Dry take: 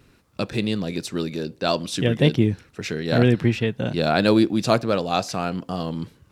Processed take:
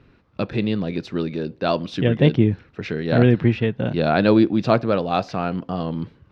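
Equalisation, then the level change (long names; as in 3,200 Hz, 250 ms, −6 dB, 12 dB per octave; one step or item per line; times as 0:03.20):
high-frequency loss of the air 260 metres
+2.5 dB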